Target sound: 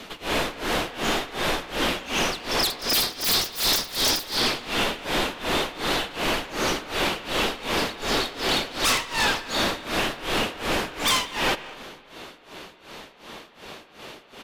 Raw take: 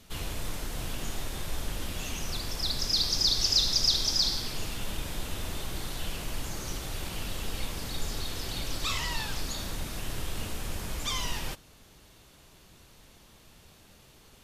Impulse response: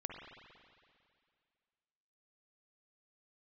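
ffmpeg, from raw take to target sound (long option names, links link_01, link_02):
-filter_complex "[0:a]acrossover=split=230 4100:gain=0.1 1 0.224[link_01][link_02][link_03];[link_01][link_02][link_03]amix=inputs=3:normalize=0,aeval=exprs='0.126*sin(PI/2*6.31*val(0)/0.126)':channel_layout=same,tremolo=f=2.7:d=0.96,asplit=2[link_04][link_05];[link_05]adelay=200,highpass=300,lowpass=3400,asoftclip=type=hard:threshold=-26dB,volume=-15dB[link_06];[link_04][link_06]amix=inputs=2:normalize=0,asplit=2[link_07][link_08];[1:a]atrim=start_sample=2205,asetrate=48510,aresample=44100,lowpass=8100[link_09];[link_08][link_09]afir=irnorm=-1:irlink=0,volume=-9.5dB[link_10];[link_07][link_10]amix=inputs=2:normalize=0"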